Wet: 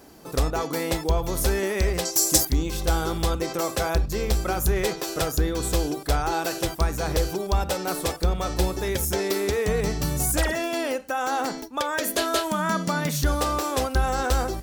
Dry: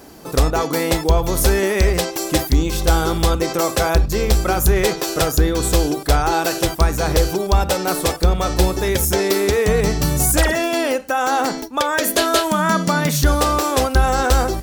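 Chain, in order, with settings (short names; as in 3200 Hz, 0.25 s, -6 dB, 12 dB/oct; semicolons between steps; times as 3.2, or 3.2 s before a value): 2.05–2.45 resonant high shelf 4200 Hz +13 dB, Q 1.5; gain -7.5 dB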